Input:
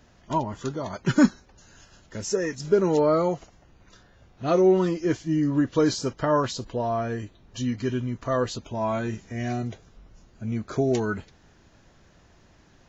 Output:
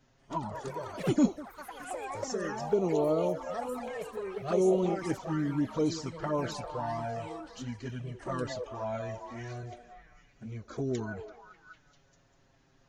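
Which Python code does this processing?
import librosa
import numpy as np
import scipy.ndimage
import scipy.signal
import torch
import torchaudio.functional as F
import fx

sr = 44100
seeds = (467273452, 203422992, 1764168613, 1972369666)

y = fx.echo_pitch(x, sr, ms=187, semitones=5, count=3, db_per_echo=-6.0)
y = fx.echo_stepped(y, sr, ms=197, hz=600.0, octaves=0.7, feedback_pct=70, wet_db=-4.5)
y = fx.env_flanger(y, sr, rest_ms=7.8, full_db=-16.5)
y = F.gain(torch.from_numpy(y), -6.5).numpy()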